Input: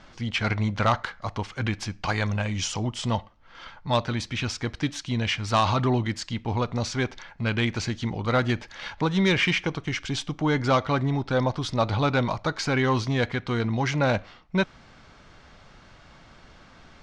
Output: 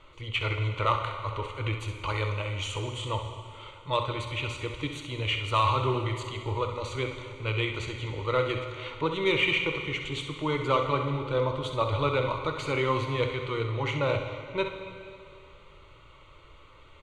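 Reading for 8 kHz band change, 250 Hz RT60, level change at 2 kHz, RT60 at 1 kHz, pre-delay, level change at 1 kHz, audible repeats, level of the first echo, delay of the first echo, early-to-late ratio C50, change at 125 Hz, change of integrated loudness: -10.0 dB, 2.6 s, -3.0 dB, 2.6 s, 4 ms, -2.0 dB, 1, -9.5 dB, 65 ms, 5.0 dB, -4.5 dB, -3.0 dB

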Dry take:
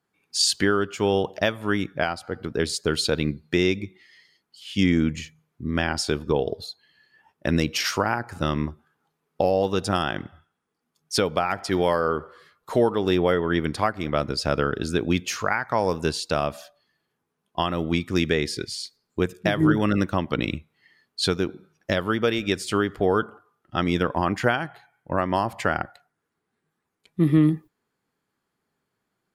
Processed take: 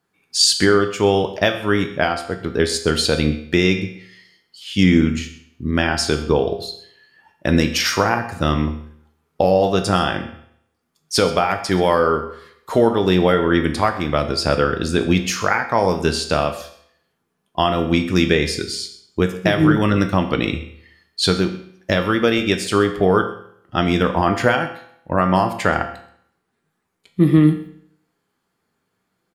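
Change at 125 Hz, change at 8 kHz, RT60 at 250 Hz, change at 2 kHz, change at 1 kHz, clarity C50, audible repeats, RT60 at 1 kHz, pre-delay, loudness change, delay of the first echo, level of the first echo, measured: +6.0 dB, +6.0 dB, 0.65 s, +6.0 dB, +6.0 dB, 9.5 dB, 1, 0.65 s, 6 ms, +6.0 dB, 0.129 s, -18.5 dB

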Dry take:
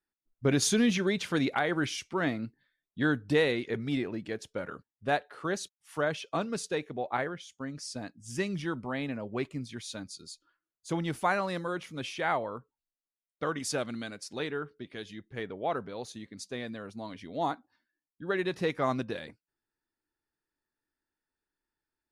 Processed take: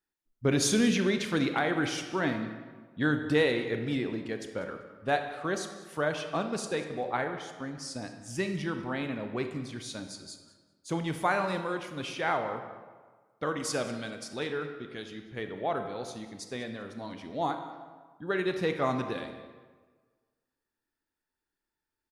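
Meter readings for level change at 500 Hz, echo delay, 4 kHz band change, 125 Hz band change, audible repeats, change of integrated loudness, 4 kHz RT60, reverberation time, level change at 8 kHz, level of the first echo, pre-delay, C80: +1.0 dB, 0.194 s, +0.5 dB, +0.5 dB, 1, +0.5 dB, 0.95 s, 1.5 s, +0.5 dB, -19.5 dB, 27 ms, 9.0 dB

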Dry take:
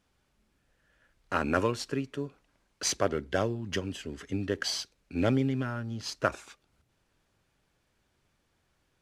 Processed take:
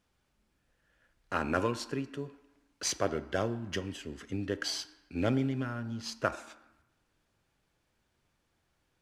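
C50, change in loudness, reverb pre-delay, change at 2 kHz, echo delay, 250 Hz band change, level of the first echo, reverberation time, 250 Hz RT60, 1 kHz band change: 14.5 dB, -2.5 dB, 5 ms, -2.5 dB, none, -2.5 dB, none, 0.95 s, 1.1 s, -2.5 dB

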